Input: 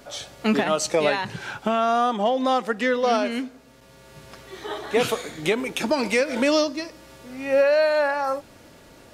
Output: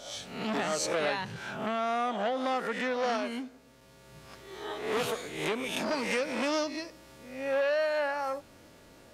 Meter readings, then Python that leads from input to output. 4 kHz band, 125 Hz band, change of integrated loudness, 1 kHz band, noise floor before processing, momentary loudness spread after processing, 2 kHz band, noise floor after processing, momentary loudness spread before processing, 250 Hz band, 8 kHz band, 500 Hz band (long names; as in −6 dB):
−7.0 dB, −7.5 dB, −8.5 dB, −8.0 dB, −50 dBFS, 12 LU, −6.5 dB, −56 dBFS, 14 LU, −9.5 dB, −6.0 dB, −9.0 dB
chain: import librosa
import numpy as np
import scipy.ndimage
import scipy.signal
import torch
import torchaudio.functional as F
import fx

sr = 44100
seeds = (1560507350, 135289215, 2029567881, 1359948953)

y = fx.spec_swells(x, sr, rise_s=0.59)
y = fx.transformer_sat(y, sr, knee_hz=1300.0)
y = y * librosa.db_to_amplitude(-8.0)